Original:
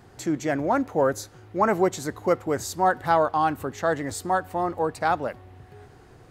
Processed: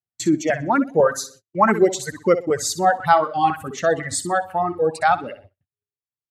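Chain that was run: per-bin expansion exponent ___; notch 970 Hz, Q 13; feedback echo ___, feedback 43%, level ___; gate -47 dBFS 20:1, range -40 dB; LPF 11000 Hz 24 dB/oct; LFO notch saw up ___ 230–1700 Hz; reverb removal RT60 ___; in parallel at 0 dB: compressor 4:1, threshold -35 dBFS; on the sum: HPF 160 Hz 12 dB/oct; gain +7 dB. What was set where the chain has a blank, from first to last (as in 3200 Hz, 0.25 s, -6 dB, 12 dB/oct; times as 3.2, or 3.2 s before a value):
1.5, 63 ms, -6.5 dB, 2 Hz, 0.93 s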